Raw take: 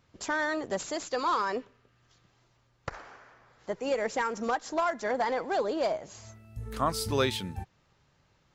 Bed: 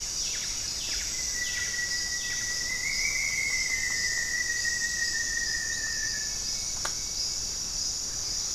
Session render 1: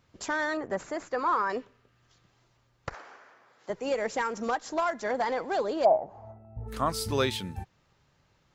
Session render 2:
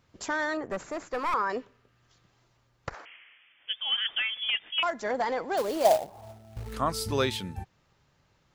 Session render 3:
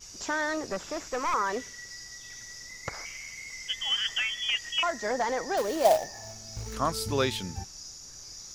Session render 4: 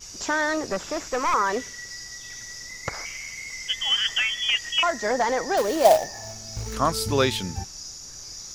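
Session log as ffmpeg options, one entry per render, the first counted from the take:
-filter_complex "[0:a]asettb=1/sr,asplit=3[a][b][c];[a]atrim=end=0.574[d];[b]atrim=start=0.57:end=1.5,asetpts=PTS-STARTPTS,afade=t=in:d=0.004:c=qsin,afade=t=out:st=0.926:d=0.004:c=qsin,highshelf=f=2.5k:t=q:w=1.5:g=-9.5[e];[c]atrim=start=1.496[f];[d][e]acrossfade=d=0.004:c1=hsin:c2=qsin[g];[g][f]acrossfade=d=0.004:c1=qsin:c2=hsin,asettb=1/sr,asplit=3[h][i][j];[h]atrim=end=2.944[k];[i]atrim=start=2.94:end=3.7,asetpts=PTS-STARTPTS,afade=t=in:d=0.004:c=qsin,afade=t=out:st=0.756:d=0.004:c=qsin,highpass=250[l];[j]atrim=start=3.696[m];[k][l]acrossfade=d=0.004:c1=hsin:c2=qsin[n];[n][m]acrossfade=d=0.004:c1=qsin:c2=hsin,asplit=3[o][p][q];[o]afade=t=out:st=5.84:d=0.02[r];[p]lowpass=f=790:t=q:w=6.2,afade=t=in:st=5.84:d=0.02,afade=t=out:st=6.67:d=0.02[s];[q]afade=t=in:st=6.67:d=0.02[t];[r][s][t]amix=inputs=3:normalize=0"
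-filter_complex "[0:a]asettb=1/sr,asplit=3[a][b][c];[a]atrim=end=0.694[d];[b]atrim=start=0.69:end=1.34,asetpts=PTS-STARTPTS,afade=t=in:d=0.004:c=qsin,afade=t=out:st=0.646:d=0.004:c=qsin,aeval=exprs='clip(val(0),-1,0.0299)':c=same[e];[c]atrim=start=1.336[f];[d][e]acrossfade=d=0.004:c1=hsin:c2=qsin[g];[g][f]acrossfade=d=0.004:c1=qsin:c2=hsin,asettb=1/sr,asplit=3[h][i][j];[h]atrim=end=3.054[k];[i]atrim=start=3.05:end=4.83,asetpts=PTS-STARTPTS,afade=t=in:d=0.004:c=qsin,afade=t=out:st=1.776:d=0.004:c=qsin,lowpass=f=3.1k:t=q:w=0.5098,lowpass=f=3.1k:t=q:w=0.6013,lowpass=f=3.1k:t=q:w=0.9,lowpass=f=3.1k:t=q:w=2.563,afreqshift=-3600[l];[j]atrim=start=4.826[m];[k][l]acrossfade=d=0.004:c1=hsin:c2=qsin[n];[n][m]acrossfade=d=0.004:c1=qsin:c2=hsin,asettb=1/sr,asplit=3[o][p][q];[o]atrim=end=5.574[r];[p]atrim=start=5.57:end=6.73,asetpts=PTS-STARTPTS,afade=t=in:d=0.004:c=qsin,afade=t=out:st=1.156:d=0.004:c=qsin,acrusher=bits=3:mode=log:mix=0:aa=0.000001[s];[q]atrim=start=6.726[t];[r][s]acrossfade=d=0.004:c1=hsin:c2=qsin[u];[u][t]acrossfade=d=0.004:c1=qsin:c2=hsin"
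-filter_complex "[1:a]volume=-13.5dB[a];[0:a][a]amix=inputs=2:normalize=0"
-af "volume=5.5dB"

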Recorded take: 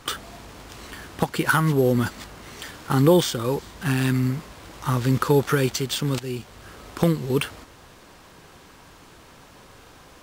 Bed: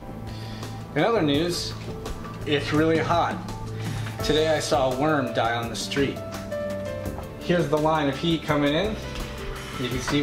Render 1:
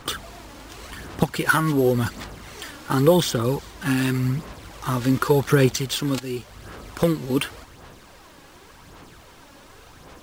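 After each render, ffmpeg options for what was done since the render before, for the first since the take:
-af "aphaser=in_gain=1:out_gain=1:delay=3.6:decay=0.44:speed=0.89:type=sinusoidal,acrusher=bits=10:mix=0:aa=0.000001"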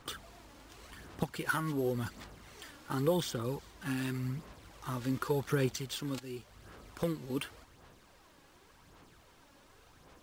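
-af "volume=-13.5dB"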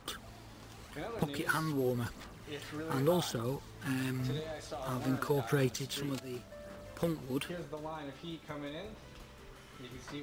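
-filter_complex "[1:a]volume=-20.5dB[a];[0:a][a]amix=inputs=2:normalize=0"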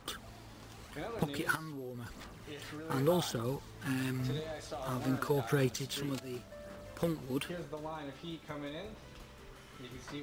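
-filter_complex "[0:a]asettb=1/sr,asplit=3[a][b][c];[a]atrim=end=1.554[d];[b]atrim=start=1.55:end=2.9,asetpts=PTS-STARTPTS,afade=t=in:d=0.004:c=qsin,afade=t=out:st=1.346:d=0.004:c=qsin,acompressor=threshold=-40dB:ratio=6:attack=3.2:release=140:knee=1:detection=peak[e];[c]atrim=start=2.896[f];[d][e]acrossfade=d=0.004:c1=hsin:c2=qsin[g];[g][f]acrossfade=d=0.004:c1=qsin:c2=hsin"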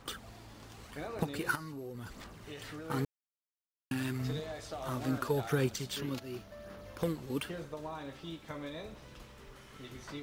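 -filter_complex "[0:a]asettb=1/sr,asplit=3[a][b][c];[a]atrim=end=0.964[d];[b]atrim=start=0.96:end=1.97,asetpts=PTS-STARTPTS,afade=t=in:d=0.004:c=qsin,afade=t=out:st=1.006:d=0.004:c=qsin,bandreject=f=3.3k:w=8[e];[c]atrim=start=1.966[f];[d][e]acrossfade=d=0.004:c1=hsin:c2=qsin[g];[g][f]acrossfade=d=0.004:c1=qsin:c2=hsin,asettb=1/sr,asplit=3[h][i][j];[h]atrim=end=5.964[k];[i]atrim=start=5.96:end=7.02,asetpts=PTS-STARTPTS,afade=t=in:d=0.004:c=qsin,afade=t=out:st=1.056:d=0.004:c=qsin,equalizer=f=8k:t=o:w=0.22:g=-12[l];[j]atrim=start=7.016[m];[k][l]acrossfade=d=0.004:c1=hsin:c2=qsin[n];[n][m]acrossfade=d=0.004:c1=qsin:c2=hsin,asplit=3[o][p][q];[o]atrim=end=3.05,asetpts=PTS-STARTPTS,afade=t=out:st=3.046:d=0.004:c=hsin[r];[p]atrim=start=3.05:end=3.91,asetpts=PTS-STARTPTS,volume=0[s];[q]atrim=start=3.91,asetpts=PTS-STARTPTS,afade=t=in:d=0.004:c=hsin[t];[r][s][t]concat=n=3:v=0:a=1"

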